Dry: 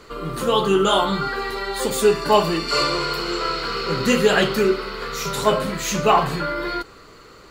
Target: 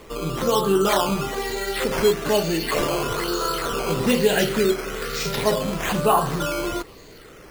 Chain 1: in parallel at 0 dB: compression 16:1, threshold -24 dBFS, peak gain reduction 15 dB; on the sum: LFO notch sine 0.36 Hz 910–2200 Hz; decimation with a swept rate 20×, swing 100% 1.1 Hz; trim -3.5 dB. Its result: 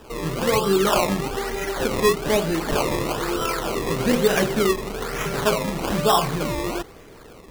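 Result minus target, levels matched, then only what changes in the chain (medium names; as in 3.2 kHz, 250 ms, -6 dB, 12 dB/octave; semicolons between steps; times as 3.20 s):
decimation with a swept rate: distortion +6 dB
change: decimation with a swept rate 8×, swing 100% 1.1 Hz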